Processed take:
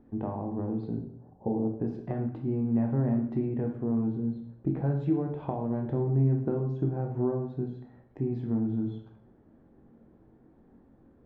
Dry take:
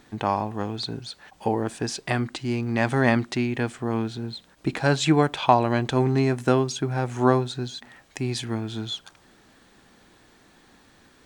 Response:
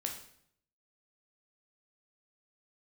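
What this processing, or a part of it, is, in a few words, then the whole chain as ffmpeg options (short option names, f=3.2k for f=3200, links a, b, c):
television next door: -filter_complex "[0:a]asettb=1/sr,asplit=3[a][b][c];[a]atrim=end=0.974[d];[b]atrim=start=0.97:end=1.8,asetpts=PTS-STARTPTS,afade=t=in:d=0.004:c=qsin,afade=t=out:st=0.826:d=0.004:c=qsin,lowpass=f=1k:w=0.5412,lowpass=f=1k:w=1.3066[e];[c]atrim=start=1.796[f];[d][e]acrossfade=d=0.004:c1=hsin:c2=qsin[g];[g][f]acrossfade=d=0.004:c1=qsin:c2=hsin,acompressor=threshold=-23dB:ratio=6,lowpass=490[h];[1:a]atrim=start_sample=2205[i];[h][i]afir=irnorm=-1:irlink=0"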